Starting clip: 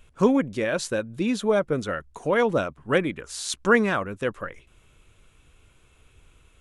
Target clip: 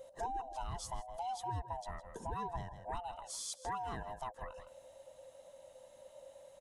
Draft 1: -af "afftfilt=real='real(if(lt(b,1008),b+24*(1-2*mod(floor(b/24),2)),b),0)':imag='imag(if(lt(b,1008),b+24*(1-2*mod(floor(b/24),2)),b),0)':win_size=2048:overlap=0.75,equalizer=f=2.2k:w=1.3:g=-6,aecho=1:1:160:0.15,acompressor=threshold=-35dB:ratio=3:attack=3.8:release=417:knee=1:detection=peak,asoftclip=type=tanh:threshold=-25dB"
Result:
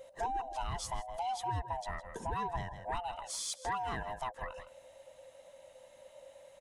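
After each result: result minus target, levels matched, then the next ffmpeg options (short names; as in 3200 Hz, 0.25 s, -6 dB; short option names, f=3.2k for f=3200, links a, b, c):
2000 Hz band +4.0 dB; compressor: peak gain reduction -3 dB
-af "afftfilt=real='real(if(lt(b,1008),b+24*(1-2*mod(floor(b/24),2)),b),0)':imag='imag(if(lt(b,1008),b+24*(1-2*mod(floor(b/24),2)),b),0)':win_size=2048:overlap=0.75,equalizer=f=2.2k:w=1.3:g=-14,aecho=1:1:160:0.15,acompressor=threshold=-35dB:ratio=3:attack=3.8:release=417:knee=1:detection=peak,asoftclip=type=tanh:threshold=-25dB"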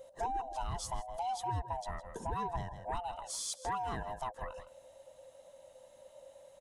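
compressor: peak gain reduction -4 dB
-af "afftfilt=real='real(if(lt(b,1008),b+24*(1-2*mod(floor(b/24),2)),b),0)':imag='imag(if(lt(b,1008),b+24*(1-2*mod(floor(b/24),2)),b),0)':win_size=2048:overlap=0.75,equalizer=f=2.2k:w=1.3:g=-14,aecho=1:1:160:0.15,acompressor=threshold=-41dB:ratio=3:attack=3.8:release=417:knee=1:detection=peak,asoftclip=type=tanh:threshold=-25dB"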